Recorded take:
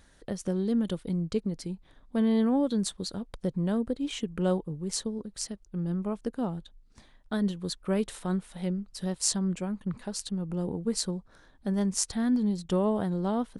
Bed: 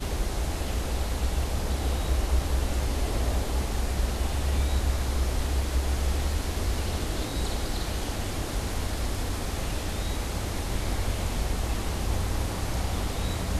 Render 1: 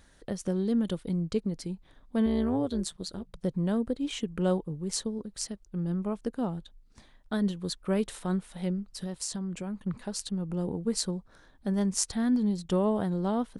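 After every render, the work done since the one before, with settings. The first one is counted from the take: 2.26–3.41 s: AM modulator 160 Hz, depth 50%; 8.87–9.87 s: compression 12:1, threshold -30 dBFS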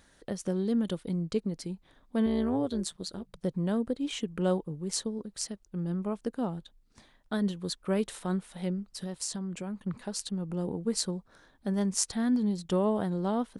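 bass shelf 88 Hz -8.5 dB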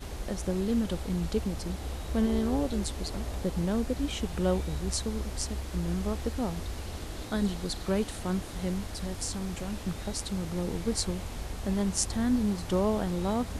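add bed -9 dB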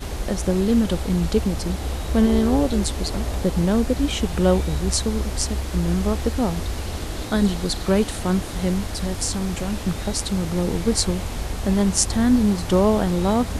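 trim +9.5 dB; peak limiter -3 dBFS, peak gain reduction 1 dB

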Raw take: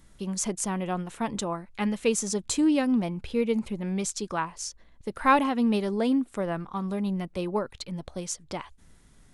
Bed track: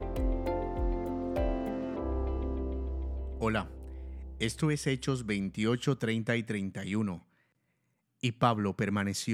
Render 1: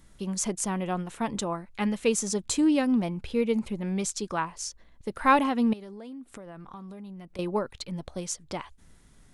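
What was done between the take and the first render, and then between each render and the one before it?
5.73–7.39 s: compression 10:1, threshold -39 dBFS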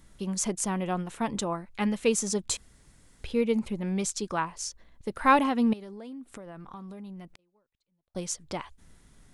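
2.57–3.24 s: room tone; 7.32–8.15 s: inverted gate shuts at -34 dBFS, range -42 dB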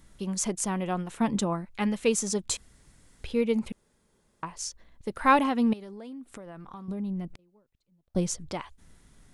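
1.20–1.65 s: peaking EQ 200 Hz +6.5 dB 1.1 oct; 3.72–4.43 s: room tone; 6.88–8.49 s: bass shelf 470 Hz +12 dB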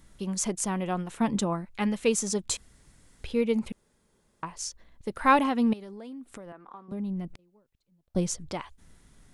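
6.52–6.92 s: three-band isolator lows -22 dB, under 270 Hz, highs -13 dB, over 2.4 kHz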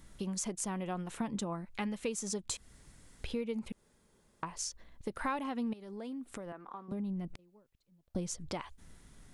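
compression 4:1, threshold -35 dBFS, peak gain reduction 16.5 dB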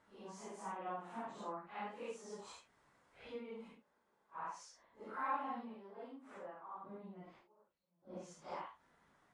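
phase randomisation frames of 200 ms; band-pass filter 970 Hz, Q 1.3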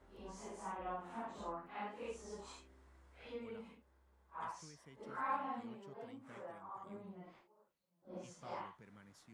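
add bed track -30 dB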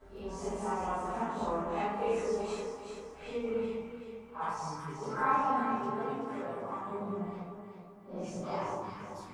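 echo whose repeats swap between lows and highs 191 ms, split 1.1 kHz, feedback 66%, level -2.5 dB; simulated room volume 41 m³, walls mixed, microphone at 1.6 m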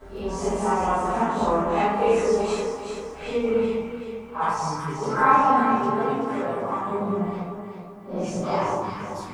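trim +11.5 dB

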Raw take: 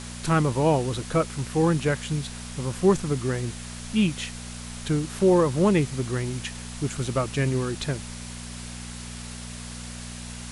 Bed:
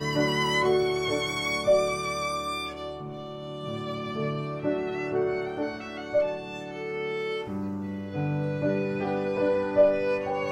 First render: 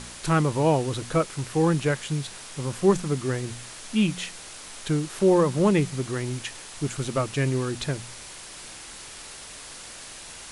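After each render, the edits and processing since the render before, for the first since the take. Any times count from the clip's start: de-hum 60 Hz, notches 4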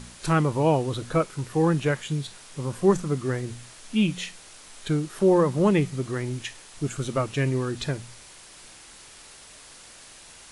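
noise print and reduce 6 dB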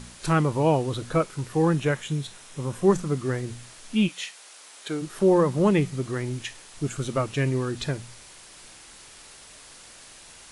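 1.75–2.86 s: band-stop 4.6 kHz, Q 11; 4.07–5.01 s: high-pass 790 Hz -> 300 Hz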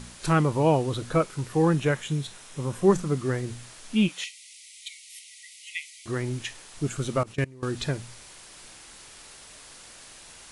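4.24–6.06 s: brick-wall FIR high-pass 1.9 kHz; 7.23–7.63 s: level held to a coarse grid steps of 23 dB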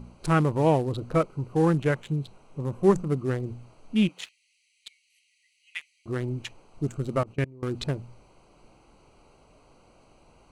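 local Wiener filter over 25 samples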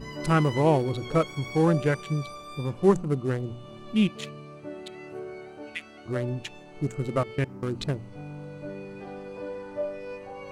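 add bed -11.5 dB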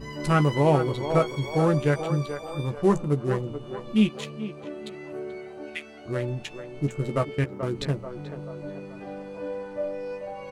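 doubling 14 ms -8 dB; band-passed feedback delay 434 ms, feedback 56%, band-pass 730 Hz, level -7 dB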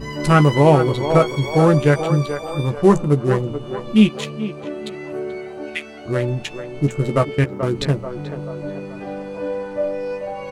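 trim +8 dB; peak limiter -2 dBFS, peak gain reduction 2 dB

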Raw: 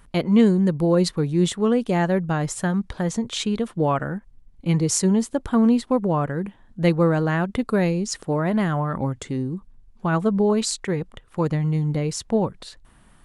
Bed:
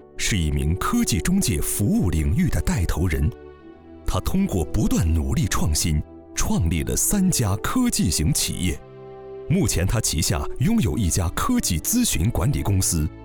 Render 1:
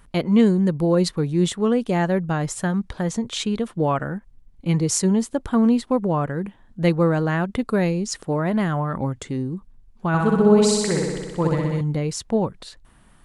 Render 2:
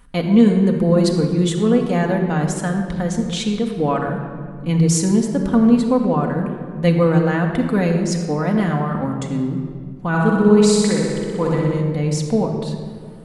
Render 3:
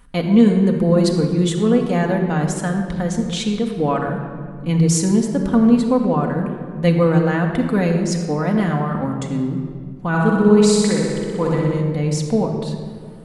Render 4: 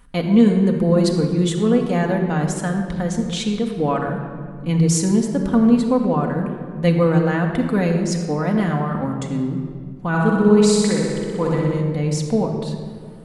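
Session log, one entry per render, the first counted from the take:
10.08–11.81 s: flutter echo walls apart 10.7 m, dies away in 1.4 s
simulated room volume 3800 m³, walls mixed, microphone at 1.9 m
no audible change
trim -1 dB

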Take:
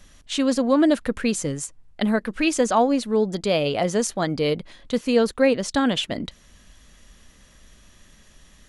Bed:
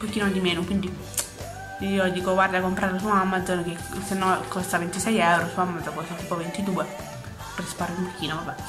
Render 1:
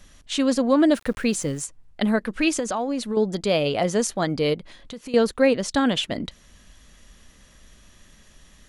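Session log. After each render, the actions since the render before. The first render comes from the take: 0.94–1.63 s: small samples zeroed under -43 dBFS; 2.59–3.17 s: compression, threshold -22 dBFS; 4.54–5.14 s: compression 5:1, threshold -34 dBFS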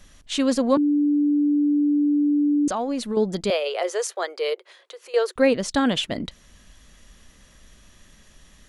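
0.77–2.68 s: bleep 292 Hz -16.5 dBFS; 3.50–5.36 s: rippled Chebyshev high-pass 360 Hz, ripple 3 dB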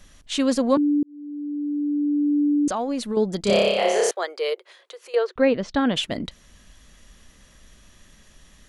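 1.03–2.40 s: fade in; 3.42–4.11 s: flutter echo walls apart 5.1 m, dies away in 1.1 s; 5.15–5.96 s: distance through air 190 m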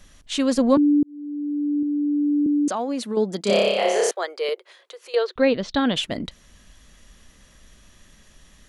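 0.58–1.83 s: bass shelf 230 Hz +8 dB; 2.46–4.49 s: high-pass 180 Hz 24 dB/octave; 5.07–5.97 s: peaking EQ 3.8 kHz +9 dB 0.66 oct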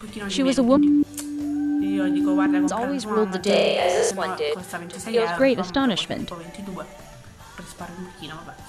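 add bed -7.5 dB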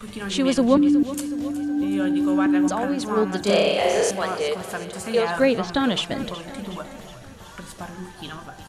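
feedback delay 369 ms, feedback 57%, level -14.5 dB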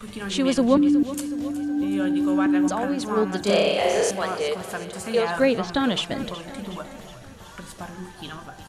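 trim -1 dB

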